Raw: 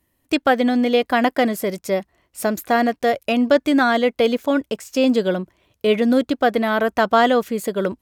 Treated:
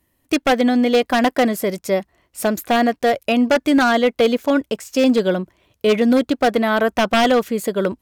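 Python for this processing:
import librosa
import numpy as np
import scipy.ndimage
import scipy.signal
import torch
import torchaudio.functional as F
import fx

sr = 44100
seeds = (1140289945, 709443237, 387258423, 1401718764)

y = 10.0 ** (-10.5 / 20.0) * (np.abs((x / 10.0 ** (-10.5 / 20.0) + 3.0) % 4.0 - 2.0) - 1.0)
y = y * librosa.db_to_amplitude(2.0)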